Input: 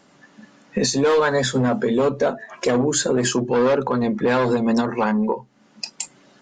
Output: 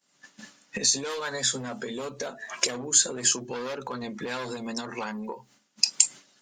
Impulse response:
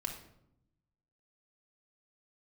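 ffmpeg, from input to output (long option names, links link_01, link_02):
-af "agate=range=-33dB:threshold=-42dB:ratio=3:detection=peak,acompressor=threshold=-29dB:ratio=12,crystalizer=i=9:c=0,volume=-4dB"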